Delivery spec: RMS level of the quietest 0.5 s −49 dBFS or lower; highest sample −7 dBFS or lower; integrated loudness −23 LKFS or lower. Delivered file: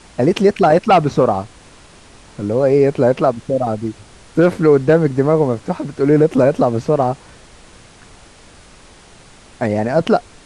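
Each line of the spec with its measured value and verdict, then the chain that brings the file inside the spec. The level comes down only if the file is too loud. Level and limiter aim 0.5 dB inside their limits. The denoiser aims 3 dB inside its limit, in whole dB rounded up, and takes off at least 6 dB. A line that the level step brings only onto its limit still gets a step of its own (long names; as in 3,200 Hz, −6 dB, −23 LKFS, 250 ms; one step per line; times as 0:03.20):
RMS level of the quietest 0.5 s −43 dBFS: out of spec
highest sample −2.0 dBFS: out of spec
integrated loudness −15.5 LKFS: out of spec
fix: level −8 dB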